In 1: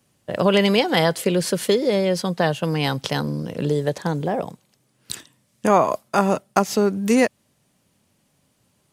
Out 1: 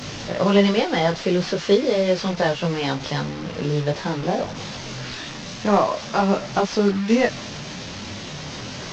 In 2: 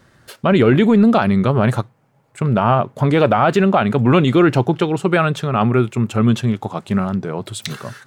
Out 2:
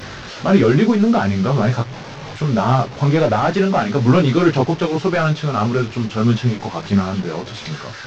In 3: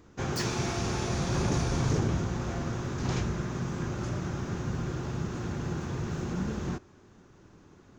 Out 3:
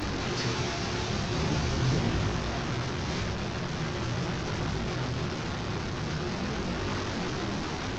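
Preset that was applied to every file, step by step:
delta modulation 32 kbps, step -25.5 dBFS; detuned doubles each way 15 cents; gain +3 dB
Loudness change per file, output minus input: -1.5, -1.0, +1.0 LU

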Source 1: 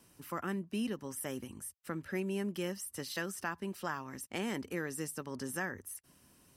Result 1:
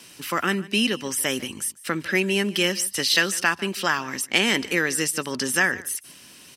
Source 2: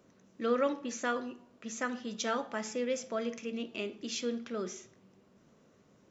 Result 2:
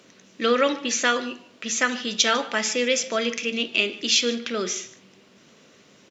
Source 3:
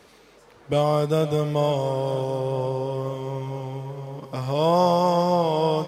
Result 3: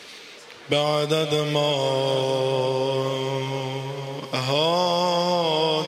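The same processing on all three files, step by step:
weighting filter D; compressor 5:1, threshold -23 dBFS; echo 0.149 s -20 dB; match loudness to -23 LUFS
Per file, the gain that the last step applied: +13.0, +9.5, +5.5 dB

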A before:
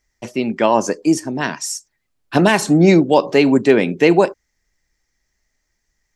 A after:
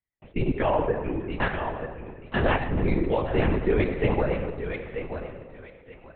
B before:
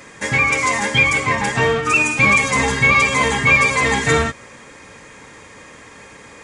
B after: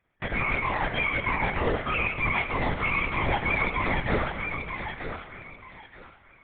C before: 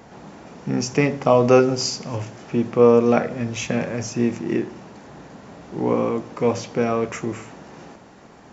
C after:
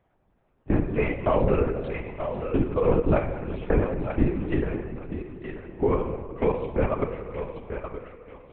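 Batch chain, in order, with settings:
reverb removal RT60 1.1 s; gate -36 dBFS, range -20 dB; low shelf 130 Hz -4.5 dB; level quantiser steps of 24 dB; flange 1.5 Hz, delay 3.5 ms, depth 7.6 ms, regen +79%; air absorption 180 m; on a send: thinning echo 0.931 s, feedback 26%, high-pass 440 Hz, level -6 dB; on the sum: shoebox room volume 2400 m³, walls mixed, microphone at 1.5 m; LPC vocoder at 8 kHz whisper; match loudness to -27 LUFS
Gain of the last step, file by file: +5.0, +2.0, +6.0 dB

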